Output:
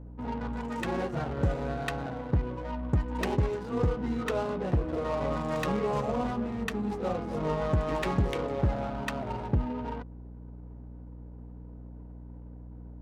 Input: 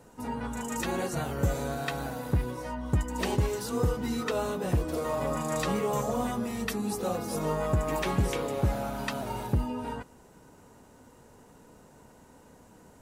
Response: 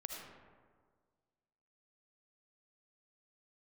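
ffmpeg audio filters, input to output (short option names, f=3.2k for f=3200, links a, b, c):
-af "adynamicsmooth=sensitivity=5.5:basefreq=600,aeval=exprs='val(0)+0.00708*(sin(2*PI*60*n/s)+sin(2*PI*2*60*n/s)/2+sin(2*PI*3*60*n/s)/3+sin(2*PI*4*60*n/s)/4+sin(2*PI*5*60*n/s)/5)':c=same"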